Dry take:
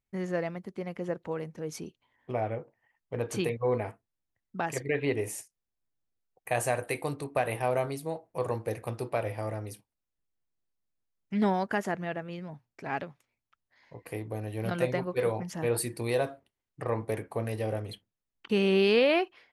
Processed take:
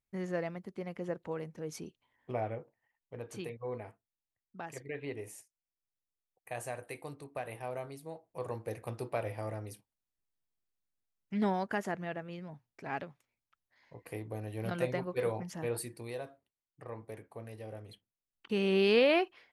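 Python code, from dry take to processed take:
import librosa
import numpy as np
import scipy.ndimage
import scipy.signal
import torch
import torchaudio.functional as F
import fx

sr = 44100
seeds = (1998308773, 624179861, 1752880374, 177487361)

y = fx.gain(x, sr, db=fx.line((2.4, -4.0), (3.22, -11.5), (7.88, -11.5), (8.97, -4.5), (15.51, -4.5), (16.22, -13.5), (17.66, -13.5), (18.98, -2.0)))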